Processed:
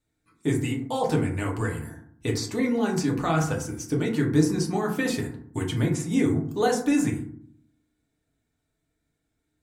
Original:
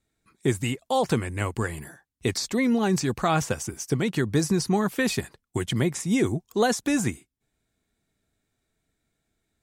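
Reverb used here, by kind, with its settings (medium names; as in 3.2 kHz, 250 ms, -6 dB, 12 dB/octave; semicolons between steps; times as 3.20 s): FDN reverb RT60 0.59 s, low-frequency decay 1.5×, high-frequency decay 0.4×, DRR -1.5 dB; trim -5.5 dB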